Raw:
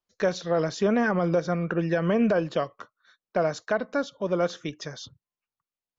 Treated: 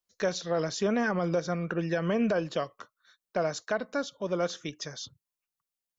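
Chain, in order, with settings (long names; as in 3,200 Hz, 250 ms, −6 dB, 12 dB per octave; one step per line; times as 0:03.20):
high-shelf EQ 4,300 Hz +10.5 dB
level −4.5 dB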